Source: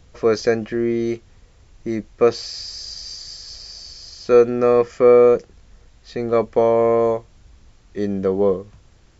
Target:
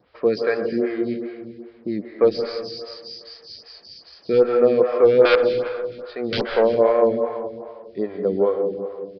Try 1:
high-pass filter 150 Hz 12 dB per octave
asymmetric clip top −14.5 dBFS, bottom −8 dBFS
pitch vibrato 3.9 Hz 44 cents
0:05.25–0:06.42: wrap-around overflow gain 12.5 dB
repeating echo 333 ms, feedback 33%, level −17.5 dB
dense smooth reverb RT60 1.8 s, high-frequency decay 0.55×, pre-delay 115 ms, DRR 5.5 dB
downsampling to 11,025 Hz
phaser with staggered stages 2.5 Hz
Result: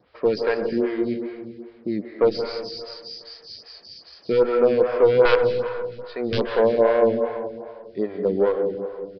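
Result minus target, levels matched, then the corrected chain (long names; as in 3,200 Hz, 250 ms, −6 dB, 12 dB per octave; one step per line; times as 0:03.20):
asymmetric clip: distortion +8 dB
high-pass filter 150 Hz 12 dB per octave
asymmetric clip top −6.5 dBFS, bottom −8 dBFS
pitch vibrato 3.9 Hz 44 cents
0:05.25–0:06.42: wrap-around overflow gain 12.5 dB
repeating echo 333 ms, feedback 33%, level −17.5 dB
dense smooth reverb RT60 1.8 s, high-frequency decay 0.55×, pre-delay 115 ms, DRR 5.5 dB
downsampling to 11,025 Hz
phaser with staggered stages 2.5 Hz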